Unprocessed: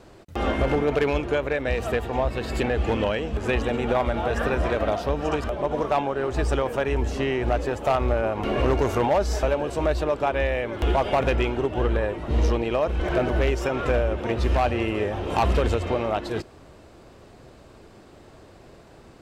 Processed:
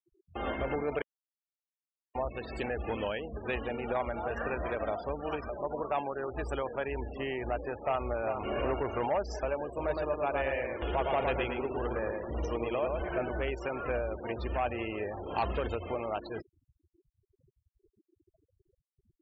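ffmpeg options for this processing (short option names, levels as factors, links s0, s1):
-filter_complex "[0:a]asplit=2[s0][s1];[s1]afade=t=in:st=7.74:d=0.01,afade=t=out:st=8.39:d=0.01,aecho=0:1:400|800|1200|1600|2000:0.446684|0.201008|0.0904534|0.040704|0.0183168[s2];[s0][s2]amix=inputs=2:normalize=0,asplit=3[s3][s4][s5];[s3]afade=t=out:st=9.76:d=0.02[s6];[s4]asplit=2[s7][s8];[s8]adelay=111,lowpass=f=4200:p=1,volume=0.708,asplit=2[s9][s10];[s10]adelay=111,lowpass=f=4200:p=1,volume=0.41,asplit=2[s11][s12];[s12]adelay=111,lowpass=f=4200:p=1,volume=0.41,asplit=2[s13][s14];[s14]adelay=111,lowpass=f=4200:p=1,volume=0.41,asplit=2[s15][s16];[s16]adelay=111,lowpass=f=4200:p=1,volume=0.41[s17];[s7][s9][s11][s13][s15][s17]amix=inputs=6:normalize=0,afade=t=in:st=9.76:d=0.02,afade=t=out:st=13.04:d=0.02[s18];[s5]afade=t=in:st=13.04:d=0.02[s19];[s6][s18][s19]amix=inputs=3:normalize=0,asplit=3[s20][s21][s22];[s20]atrim=end=1.02,asetpts=PTS-STARTPTS,afade=t=out:st=1.016:d=0.004:c=hsin[s23];[s21]atrim=start=1.02:end=2.15,asetpts=PTS-STARTPTS,volume=0[s24];[s22]atrim=start=2.15,asetpts=PTS-STARTPTS,afade=t=in:d=0.004:c=hsin[s25];[s23][s24][s25]concat=n=3:v=0:a=1,afftfilt=real='re*gte(hypot(re,im),0.0282)':imag='im*gte(hypot(re,im),0.0282)':win_size=1024:overlap=0.75,lowshelf=f=320:g=-7,volume=0.422"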